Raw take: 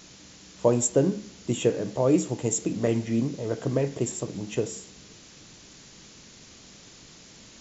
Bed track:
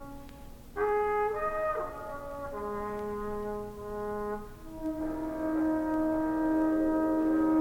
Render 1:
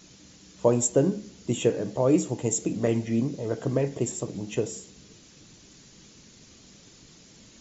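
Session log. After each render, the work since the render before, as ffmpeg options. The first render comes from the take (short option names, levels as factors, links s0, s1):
-af "afftdn=nr=6:nf=-50"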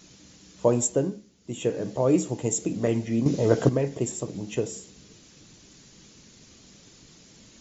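-filter_complex "[0:a]asplit=5[s0][s1][s2][s3][s4];[s0]atrim=end=1.26,asetpts=PTS-STARTPTS,afade=t=out:st=0.83:d=0.43:silence=0.237137[s5];[s1]atrim=start=1.26:end=1.41,asetpts=PTS-STARTPTS,volume=0.237[s6];[s2]atrim=start=1.41:end=3.262,asetpts=PTS-STARTPTS,afade=t=in:d=0.43:silence=0.237137[s7];[s3]atrim=start=3.258:end=3.692,asetpts=PTS-STARTPTS,volume=2.82[s8];[s4]atrim=start=3.688[s9];[s5][s6][s7]concat=n=3:v=0:a=1[s10];[s10][s8]acrossfade=d=0.004:c1=hsin:c2=hsin[s11];[s11][s9]acrossfade=d=0.004:c1=hsin:c2=hsin"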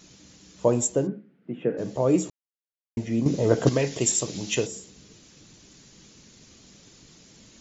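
-filter_complex "[0:a]asplit=3[s0][s1][s2];[s0]afade=t=out:st=1.06:d=0.02[s3];[s1]highpass=f=150:w=0.5412,highpass=f=150:w=1.3066,equalizer=f=150:t=q:w=4:g=8,equalizer=f=250:t=q:w=4:g=3,equalizer=f=990:t=q:w=4:g=-7,equalizer=f=1500:t=q:w=4:g=5,lowpass=f=2200:w=0.5412,lowpass=f=2200:w=1.3066,afade=t=in:st=1.06:d=0.02,afade=t=out:st=1.77:d=0.02[s4];[s2]afade=t=in:st=1.77:d=0.02[s5];[s3][s4][s5]amix=inputs=3:normalize=0,asplit=3[s6][s7][s8];[s6]afade=t=out:st=3.66:d=0.02[s9];[s7]equalizer=f=4500:t=o:w=2.8:g=14.5,afade=t=in:st=3.66:d=0.02,afade=t=out:st=4.65:d=0.02[s10];[s8]afade=t=in:st=4.65:d=0.02[s11];[s9][s10][s11]amix=inputs=3:normalize=0,asplit=3[s12][s13][s14];[s12]atrim=end=2.3,asetpts=PTS-STARTPTS,afade=t=out:st=2.296:d=0.004:c=hsin[s15];[s13]atrim=start=2.3:end=2.97,asetpts=PTS-STARTPTS,volume=0[s16];[s14]atrim=start=2.97,asetpts=PTS-STARTPTS,afade=t=in:d=0.004:c=hsin[s17];[s15][s16][s17]concat=n=3:v=0:a=1"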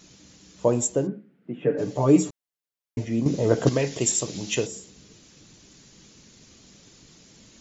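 -filter_complex "[0:a]asettb=1/sr,asplit=3[s0][s1][s2];[s0]atrim=end=1.624[s3];[s1]atrim=start=1.62:end=3.05,asetpts=PTS-STARTPTS,afade=t=in:d=0.004:c=qsin,afade=t=out:st=1.426:d=0.004:c=qsin,aecho=1:1:6.9:0.96,atrim=end_sample=63063[s4];[s2]atrim=start=3.046[s5];[s3][s4]acrossfade=d=0.004:c1=hsin:c2=qsin[s6];[s6][s5]acrossfade=d=0.004:c1=qsin:c2=hsin"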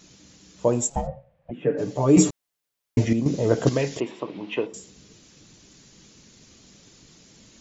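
-filter_complex "[0:a]asplit=3[s0][s1][s2];[s0]afade=t=out:st=0.89:d=0.02[s3];[s1]aeval=exprs='val(0)*sin(2*PI*340*n/s)':c=same,afade=t=in:st=0.89:d=0.02,afade=t=out:st=1.5:d=0.02[s4];[s2]afade=t=in:st=1.5:d=0.02[s5];[s3][s4][s5]amix=inputs=3:normalize=0,asettb=1/sr,asplit=3[s6][s7][s8];[s6]atrim=end=4.004[s9];[s7]atrim=start=4:end=4.74,asetpts=PTS-STARTPTS,afade=t=in:d=0.004:c=qsin,afade=t=out:st=0.736:d=0.004:c=qsin,highpass=240,equalizer=f=300:t=q:w=4:g=4,equalizer=f=1000:t=q:w=4:g=9,equalizer=f=1700:t=q:w=4:g=-3,lowpass=f=2700:w=0.5412,lowpass=f=2700:w=1.3066[s10];[s8]atrim=start=4.736[s11];[s9][s10]acrossfade=d=0.004:c1=hsin:c2=qsin[s12];[s12][s11]acrossfade=d=0.004:c1=qsin:c2=hsin,asplit=3[s13][s14][s15];[s13]atrim=end=2.172[s16];[s14]atrim=start=2.168:end=3.132,asetpts=PTS-STARTPTS,volume=2.82[s17];[s15]atrim=start=3.128[s18];[s16][s17]acrossfade=d=0.004:c1=hsin:c2=hsin[s19];[s19][s18]acrossfade=d=0.004:c1=hsin:c2=hsin"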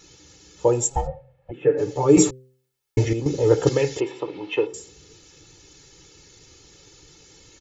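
-af "aecho=1:1:2.3:0.88,bandreject=f=129.5:t=h:w=4,bandreject=f=259:t=h:w=4,bandreject=f=388.5:t=h:w=4,bandreject=f=518:t=h:w=4"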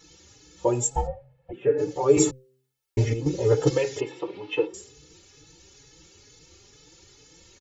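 -filter_complex "[0:a]asplit=2[s0][s1];[s1]adelay=4.2,afreqshift=2.2[s2];[s0][s2]amix=inputs=2:normalize=1"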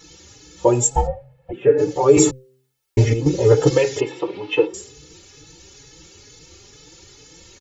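-af "volume=2.37,alimiter=limit=0.794:level=0:latency=1"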